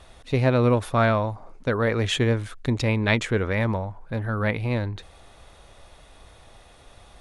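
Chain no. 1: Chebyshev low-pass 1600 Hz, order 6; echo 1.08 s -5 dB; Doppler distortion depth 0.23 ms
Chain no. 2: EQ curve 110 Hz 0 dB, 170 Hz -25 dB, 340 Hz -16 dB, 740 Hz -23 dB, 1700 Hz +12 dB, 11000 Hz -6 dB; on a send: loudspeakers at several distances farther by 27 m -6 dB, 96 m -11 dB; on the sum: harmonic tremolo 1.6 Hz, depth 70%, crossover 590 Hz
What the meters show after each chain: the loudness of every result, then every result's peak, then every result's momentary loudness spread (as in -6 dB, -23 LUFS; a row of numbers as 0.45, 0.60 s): -24.5, -25.0 LUFS; -10.0, -7.5 dBFS; 11, 13 LU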